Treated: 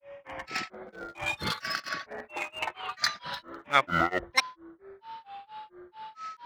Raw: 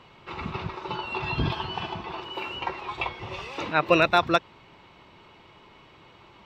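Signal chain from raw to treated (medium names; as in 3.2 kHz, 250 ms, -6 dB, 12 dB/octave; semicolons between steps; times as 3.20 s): local Wiener filter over 9 samples; whistle 660 Hz -37 dBFS; granulator 253 ms, grains 4.4 per s, spray 14 ms, pitch spread up and down by 12 st; tilt shelf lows -9 dB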